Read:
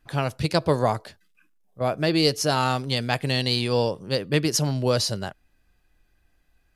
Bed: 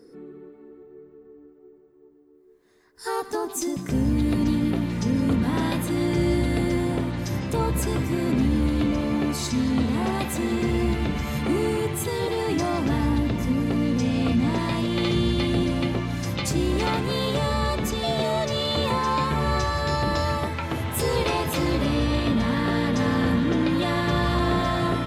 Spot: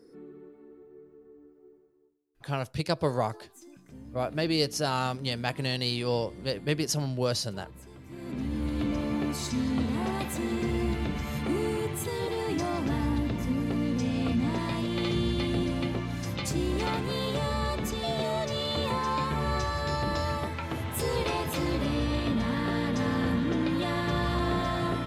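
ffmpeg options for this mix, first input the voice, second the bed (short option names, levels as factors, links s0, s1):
-filter_complex "[0:a]adelay=2350,volume=0.501[s0];[1:a]volume=4.73,afade=t=out:st=1.72:d=0.47:silence=0.112202,afade=t=in:st=8.02:d=0.94:silence=0.11885[s1];[s0][s1]amix=inputs=2:normalize=0"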